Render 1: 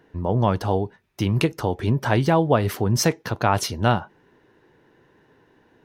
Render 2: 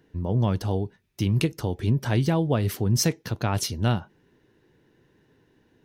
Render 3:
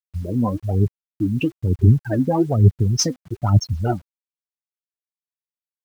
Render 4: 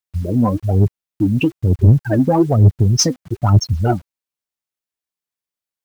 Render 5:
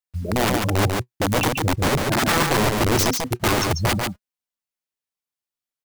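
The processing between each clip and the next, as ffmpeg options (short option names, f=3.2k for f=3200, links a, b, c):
-af "equalizer=f=960:w=0.51:g=-10.5"
-af "afftfilt=real='re*gte(hypot(re,im),0.126)':imag='im*gte(hypot(re,im),0.126)':win_size=1024:overlap=0.75,aphaser=in_gain=1:out_gain=1:delay=4:decay=0.76:speed=1.1:type=sinusoidal,acrusher=bits=8:mix=0:aa=0.000001,volume=2.5dB"
-af "acontrast=69,volume=-1dB"
-af "flanger=delay=3.9:depth=4.5:regen=52:speed=0.46:shape=sinusoidal,aeval=exprs='(mod(5.62*val(0)+1,2)-1)/5.62':c=same,aecho=1:1:143:0.668"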